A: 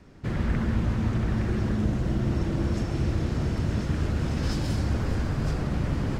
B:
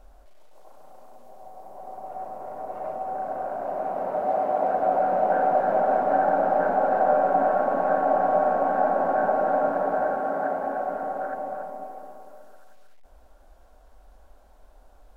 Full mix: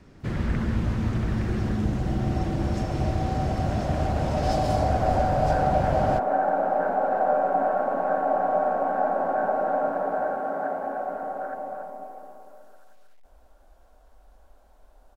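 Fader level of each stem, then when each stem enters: 0.0 dB, -2.0 dB; 0.00 s, 0.20 s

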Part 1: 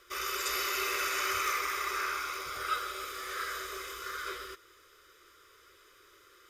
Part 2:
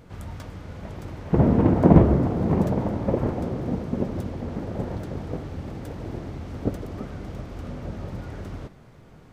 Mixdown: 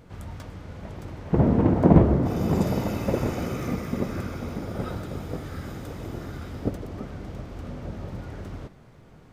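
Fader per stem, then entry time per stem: -10.0 dB, -1.5 dB; 2.15 s, 0.00 s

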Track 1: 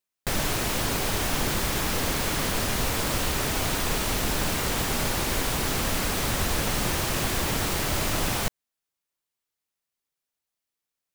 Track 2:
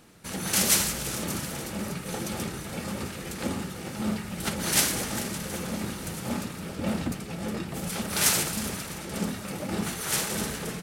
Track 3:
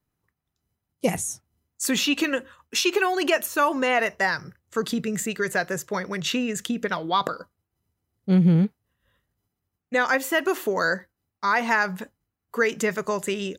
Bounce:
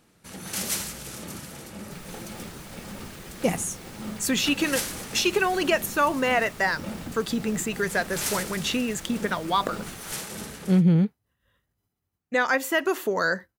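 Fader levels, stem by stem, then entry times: -19.5 dB, -6.5 dB, -1.0 dB; 1.65 s, 0.00 s, 2.40 s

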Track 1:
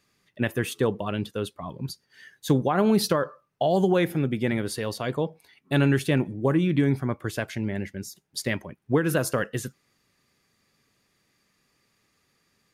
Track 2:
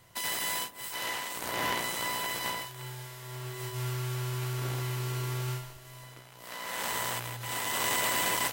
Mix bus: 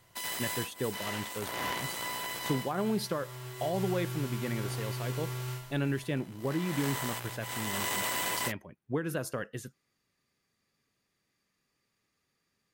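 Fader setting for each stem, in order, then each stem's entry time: -10.0 dB, -3.5 dB; 0.00 s, 0.00 s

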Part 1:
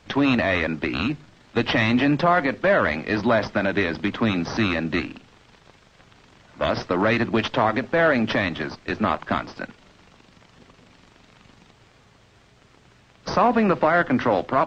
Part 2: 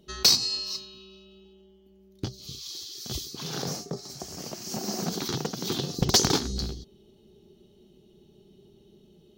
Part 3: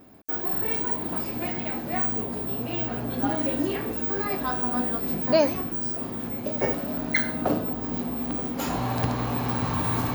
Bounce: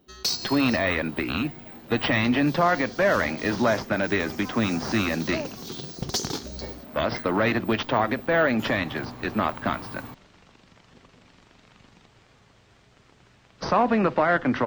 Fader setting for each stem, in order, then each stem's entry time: -2.5 dB, -7.0 dB, -13.5 dB; 0.35 s, 0.00 s, 0.00 s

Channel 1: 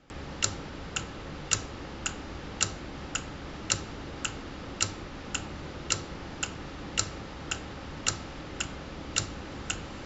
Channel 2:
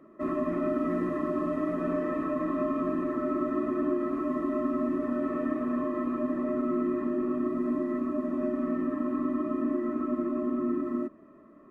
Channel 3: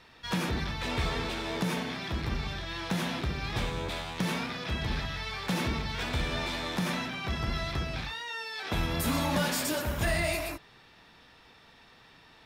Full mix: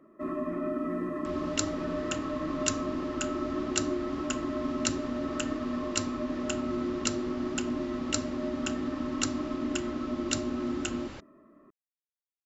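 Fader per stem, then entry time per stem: -3.0 dB, -3.5 dB, mute; 1.15 s, 0.00 s, mute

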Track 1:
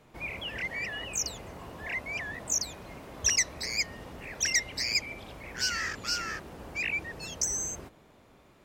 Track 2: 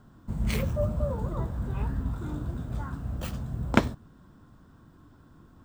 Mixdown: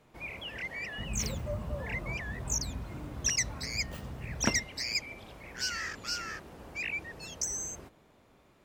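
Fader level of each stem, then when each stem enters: -4.0 dB, -8.5 dB; 0.00 s, 0.70 s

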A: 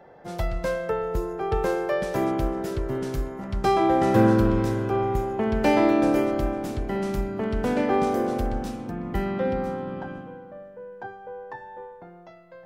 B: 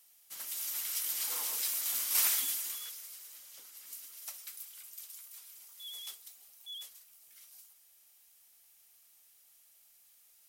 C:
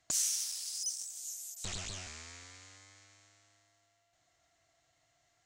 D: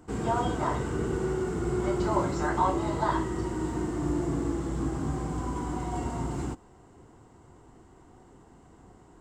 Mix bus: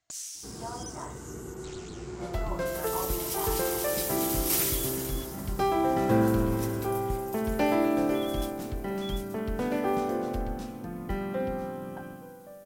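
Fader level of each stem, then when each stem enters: -5.5 dB, +1.0 dB, -7.5 dB, -11.0 dB; 1.95 s, 2.35 s, 0.00 s, 0.35 s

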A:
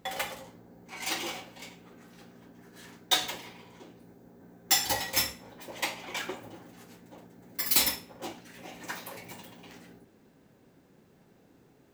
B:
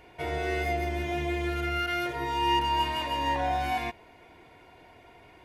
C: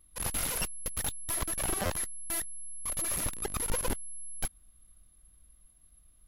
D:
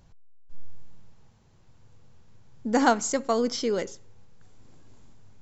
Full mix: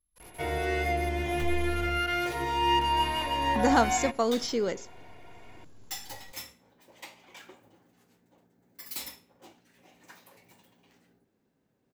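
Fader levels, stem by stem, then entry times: -14.0 dB, +0.5 dB, -19.5 dB, -2.0 dB; 1.20 s, 0.20 s, 0.00 s, 0.90 s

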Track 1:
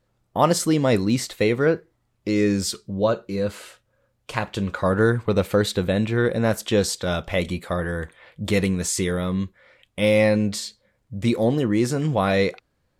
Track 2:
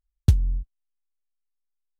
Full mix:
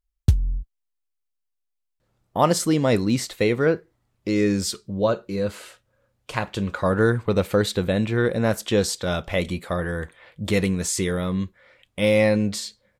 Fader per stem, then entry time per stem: -0.5 dB, 0.0 dB; 2.00 s, 0.00 s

